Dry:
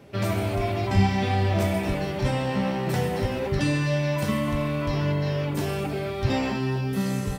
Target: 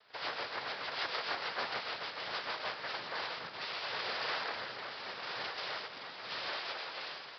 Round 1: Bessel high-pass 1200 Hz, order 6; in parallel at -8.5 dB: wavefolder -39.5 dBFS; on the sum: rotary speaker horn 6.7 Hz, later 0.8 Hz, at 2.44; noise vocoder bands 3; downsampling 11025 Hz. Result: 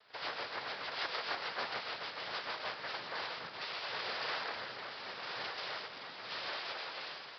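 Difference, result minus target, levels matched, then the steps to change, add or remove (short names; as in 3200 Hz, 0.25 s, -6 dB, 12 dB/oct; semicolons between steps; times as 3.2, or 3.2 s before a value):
wavefolder: distortion +13 dB
change: wavefolder -33.5 dBFS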